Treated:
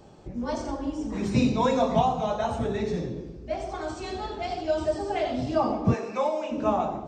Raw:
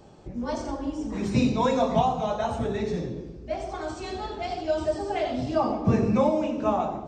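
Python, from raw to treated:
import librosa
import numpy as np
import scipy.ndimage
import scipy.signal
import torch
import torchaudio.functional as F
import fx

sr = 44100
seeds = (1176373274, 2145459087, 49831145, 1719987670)

y = fx.highpass(x, sr, hz=580.0, slope=12, at=(5.93, 6.5), fade=0.02)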